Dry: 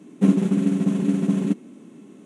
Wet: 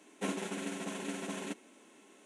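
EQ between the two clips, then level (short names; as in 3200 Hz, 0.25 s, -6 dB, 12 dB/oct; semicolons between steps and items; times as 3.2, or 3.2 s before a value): HPF 780 Hz 12 dB/oct; notch 1200 Hz, Q 6.9; 0.0 dB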